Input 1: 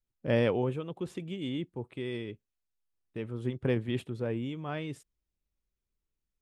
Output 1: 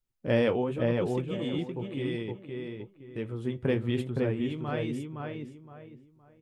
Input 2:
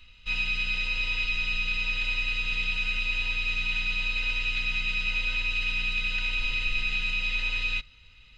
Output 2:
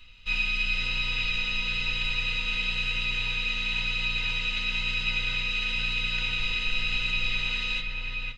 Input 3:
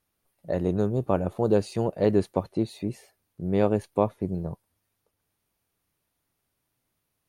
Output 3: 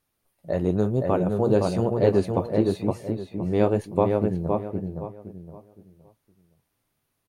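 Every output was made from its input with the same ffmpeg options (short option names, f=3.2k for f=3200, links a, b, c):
-filter_complex "[0:a]asplit=2[a][b];[b]adelay=516,lowpass=f=2.3k:p=1,volume=-3dB,asplit=2[c][d];[d]adelay=516,lowpass=f=2.3k:p=1,volume=0.3,asplit=2[e][f];[f]adelay=516,lowpass=f=2.3k:p=1,volume=0.3,asplit=2[g][h];[h]adelay=516,lowpass=f=2.3k:p=1,volume=0.3[i];[a][c][e][g][i]amix=inputs=5:normalize=0,flanger=delay=7.2:depth=5.7:regen=-53:speed=0.98:shape=sinusoidal,volume=5.5dB"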